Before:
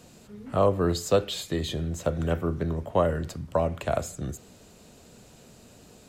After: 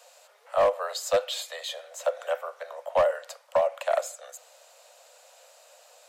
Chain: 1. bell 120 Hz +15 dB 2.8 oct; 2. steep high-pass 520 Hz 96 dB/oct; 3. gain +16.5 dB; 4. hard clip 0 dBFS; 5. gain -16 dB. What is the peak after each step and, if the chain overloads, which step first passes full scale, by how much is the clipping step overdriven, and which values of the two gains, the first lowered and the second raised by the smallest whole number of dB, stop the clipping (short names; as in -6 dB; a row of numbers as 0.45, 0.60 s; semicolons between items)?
-4.5, -9.5, +7.0, 0.0, -16.0 dBFS; step 3, 7.0 dB; step 3 +9.5 dB, step 5 -9 dB